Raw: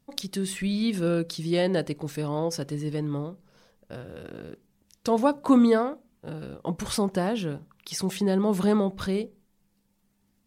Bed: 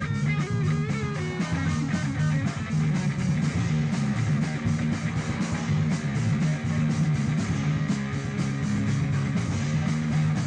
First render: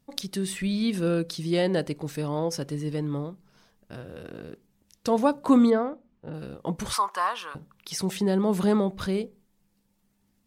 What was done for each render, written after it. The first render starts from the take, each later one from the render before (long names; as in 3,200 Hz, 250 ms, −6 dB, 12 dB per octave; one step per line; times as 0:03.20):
0:03.30–0:03.98: parametric band 520 Hz −14.5 dB 0.21 octaves
0:05.70–0:06.34: head-to-tape spacing loss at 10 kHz 23 dB
0:06.93–0:07.55: high-pass with resonance 1,100 Hz, resonance Q 8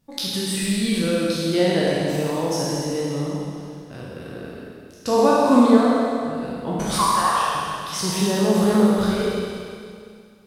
peak hold with a decay on every bin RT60 0.98 s
four-comb reverb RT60 2.3 s, combs from 33 ms, DRR −2 dB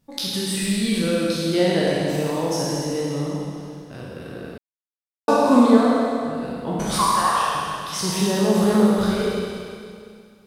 0:04.58–0:05.28: silence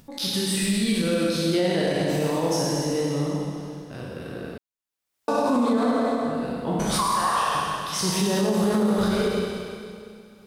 brickwall limiter −14 dBFS, peak gain reduction 11 dB
upward compression, threshold −43 dBFS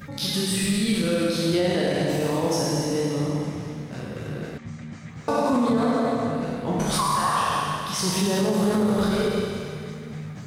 mix in bed −11.5 dB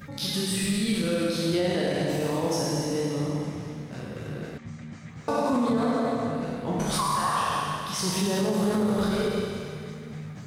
level −3 dB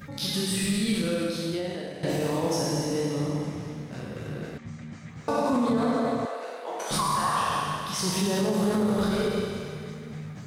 0:00.95–0:02.03: fade out, to −14 dB
0:06.25–0:06.91: high-pass filter 460 Hz 24 dB per octave